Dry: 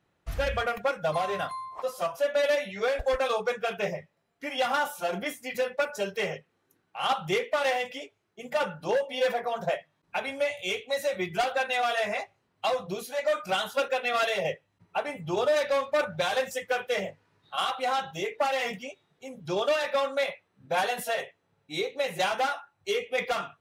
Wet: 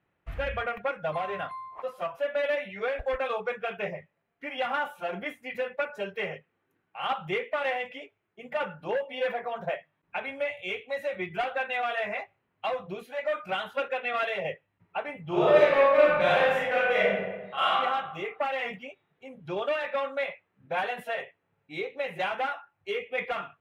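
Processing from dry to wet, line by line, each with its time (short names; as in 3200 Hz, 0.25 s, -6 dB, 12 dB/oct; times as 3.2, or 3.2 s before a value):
15.24–17.71 reverb throw, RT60 1.2 s, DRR -7.5 dB
whole clip: resonant high shelf 3700 Hz -13.5 dB, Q 1.5; gain -3.5 dB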